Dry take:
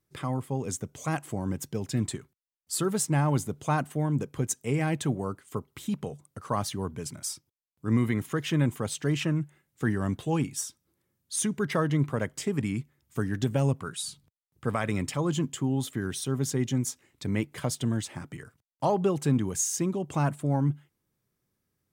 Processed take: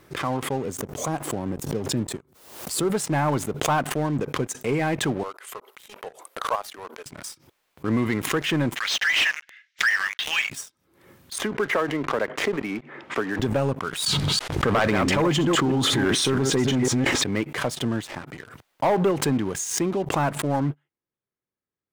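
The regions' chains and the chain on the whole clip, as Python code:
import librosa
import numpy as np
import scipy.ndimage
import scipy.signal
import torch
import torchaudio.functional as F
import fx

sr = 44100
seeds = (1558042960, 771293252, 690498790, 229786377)

y = fx.chain(x, sr, fx.highpass(hz=49.0, slope=12),
    fx.peak_eq(hz=2100.0, db=-11.5, octaves=2.1),
    fx.pre_swell(db_per_s=69.0), at=(0.58, 2.92))
y = fx.chain(y, sr, fx.peak_eq(hz=12000.0, db=10.0, octaves=0.33),
    fx.level_steps(step_db=9),
    fx.highpass(hz=460.0, slope=24), at=(5.23, 7.06))
y = fx.chain(y, sr, fx.cheby1_bandpass(low_hz=1800.0, high_hz=6000.0, order=3),
    fx.leveller(passes=5), at=(8.76, 10.5))
y = fx.chain(y, sr, fx.block_float(bits=7),
    fx.bandpass_edges(low_hz=290.0, high_hz=2700.0),
    fx.band_squash(depth_pct=70), at=(11.38, 13.39))
y = fx.chain(y, sr, fx.reverse_delay(ms=166, wet_db=-6.0),
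    fx.lowpass(hz=8100.0, slope=12),
    fx.env_flatten(amount_pct=100), at=(14.06, 17.24))
y = fx.bass_treble(y, sr, bass_db=-10, treble_db=-12)
y = fx.leveller(y, sr, passes=3)
y = fx.pre_swell(y, sr, db_per_s=73.0)
y = y * librosa.db_to_amplitude(-3.0)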